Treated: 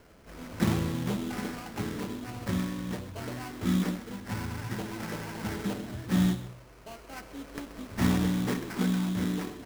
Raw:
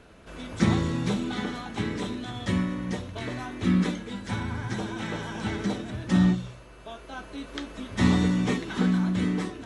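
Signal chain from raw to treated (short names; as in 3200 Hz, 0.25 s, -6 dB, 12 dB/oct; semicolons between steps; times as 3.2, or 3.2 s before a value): sample-rate reducer 3600 Hz, jitter 20%; echo 0.129 s -15.5 dB; gain -4 dB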